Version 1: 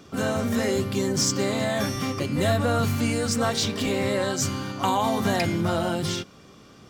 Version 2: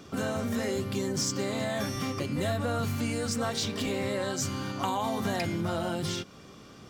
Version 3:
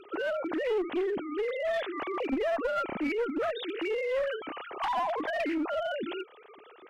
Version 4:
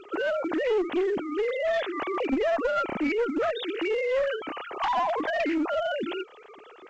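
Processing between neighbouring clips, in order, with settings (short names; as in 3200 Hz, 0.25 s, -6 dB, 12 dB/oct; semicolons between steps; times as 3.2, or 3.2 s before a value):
compressor 2:1, threshold -32 dBFS, peak gain reduction 8 dB
sine-wave speech; one-sided clip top -27.5 dBFS
gain +4 dB; A-law 128 kbps 16000 Hz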